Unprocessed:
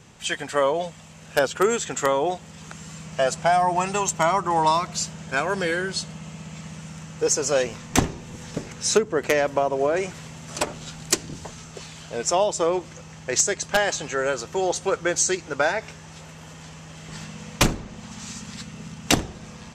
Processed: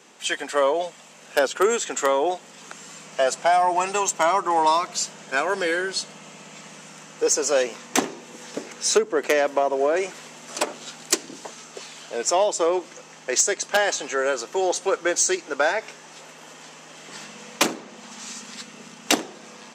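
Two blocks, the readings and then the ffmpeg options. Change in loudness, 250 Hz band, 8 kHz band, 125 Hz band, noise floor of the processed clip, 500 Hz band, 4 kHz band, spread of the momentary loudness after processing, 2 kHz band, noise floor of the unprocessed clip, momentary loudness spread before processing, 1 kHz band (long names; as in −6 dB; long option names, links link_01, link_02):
+0.5 dB, −1.5 dB, +1.0 dB, −16.0 dB, −46 dBFS, +1.0 dB, +1.0 dB, 21 LU, +1.0 dB, −43 dBFS, 18 LU, +1.0 dB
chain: -af "aeval=exprs='0.473*(cos(1*acos(clip(val(0)/0.473,-1,1)))-cos(1*PI/2))+0.0188*(cos(5*acos(clip(val(0)/0.473,-1,1)))-cos(5*PI/2))':channel_layout=same,highpass=frequency=260:width=0.5412,highpass=frequency=260:width=1.3066"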